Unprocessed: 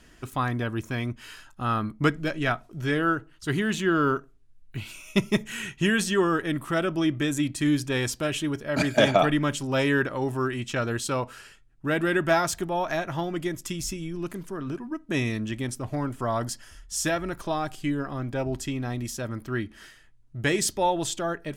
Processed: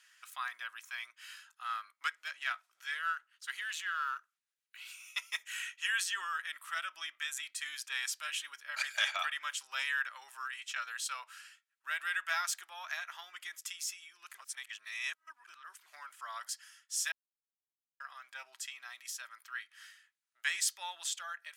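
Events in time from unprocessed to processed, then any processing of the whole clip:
1.63–5.21 s: partial rectifier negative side -3 dB
14.38–15.86 s: reverse
17.12–18.00 s: mute
whole clip: high-pass 1.3 kHz 24 dB/octave; trim -5 dB

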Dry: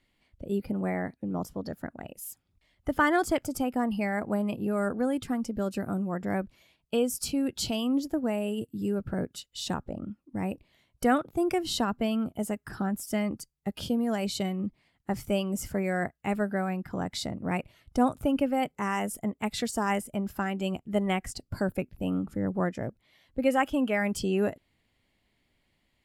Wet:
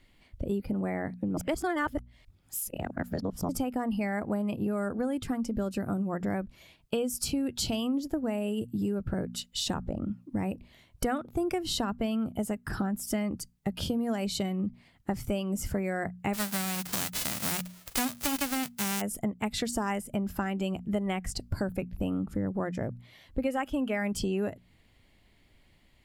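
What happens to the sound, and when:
1.37–3.49 s: reverse
16.33–19.00 s: formants flattened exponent 0.1
whole clip: bass shelf 120 Hz +7.5 dB; hum notches 60/120/180/240 Hz; compression 4:1, threshold -36 dBFS; trim +7 dB

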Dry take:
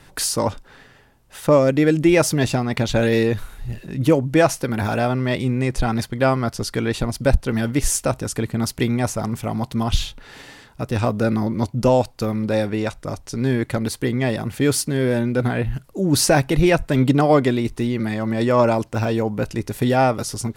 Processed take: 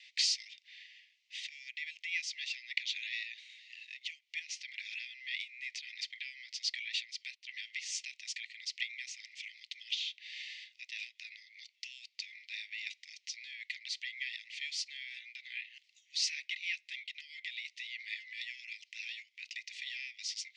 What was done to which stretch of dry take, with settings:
4.39–7.00 s: compression, threshold -20 dBFS
whole clip: Bessel low-pass 3.5 kHz, order 8; compression 5:1, threshold -24 dBFS; steep high-pass 2 kHz 96 dB/octave; trim +3.5 dB

